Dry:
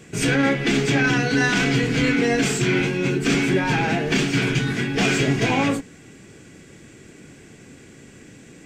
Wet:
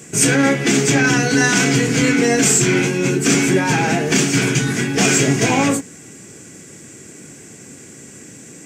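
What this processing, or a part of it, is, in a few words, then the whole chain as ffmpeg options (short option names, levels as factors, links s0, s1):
budget condenser microphone: -af "highpass=100,highshelf=f=5100:t=q:w=1.5:g=8.5,volume=1.68"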